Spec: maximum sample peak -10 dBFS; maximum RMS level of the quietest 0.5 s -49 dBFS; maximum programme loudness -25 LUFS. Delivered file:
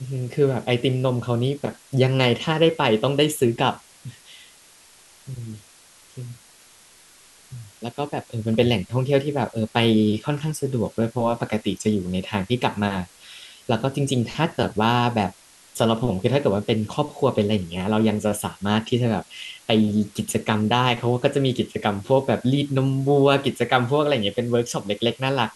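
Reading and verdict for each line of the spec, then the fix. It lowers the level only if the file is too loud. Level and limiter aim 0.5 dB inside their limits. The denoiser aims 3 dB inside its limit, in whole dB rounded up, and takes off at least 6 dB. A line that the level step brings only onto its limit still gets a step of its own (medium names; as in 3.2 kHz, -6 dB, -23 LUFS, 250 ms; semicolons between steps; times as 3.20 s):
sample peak -3.0 dBFS: fail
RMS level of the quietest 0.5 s -51 dBFS: pass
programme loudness -22.0 LUFS: fail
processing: trim -3.5 dB; peak limiter -10.5 dBFS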